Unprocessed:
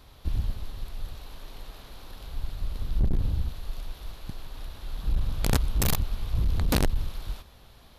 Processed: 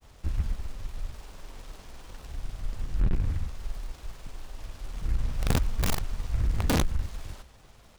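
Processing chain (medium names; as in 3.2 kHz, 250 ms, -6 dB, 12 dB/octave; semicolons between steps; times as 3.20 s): granulator, spray 35 ms; delay time shaken by noise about 1.5 kHz, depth 0.077 ms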